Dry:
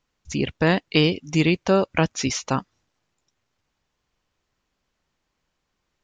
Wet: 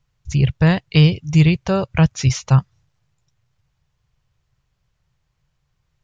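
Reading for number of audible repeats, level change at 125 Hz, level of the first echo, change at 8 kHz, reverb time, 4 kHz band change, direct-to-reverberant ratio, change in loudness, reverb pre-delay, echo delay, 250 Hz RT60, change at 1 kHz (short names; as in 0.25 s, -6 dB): none, +12.0 dB, none, 0.0 dB, none, 0.0 dB, none, +5.5 dB, none, none, none, -0.5 dB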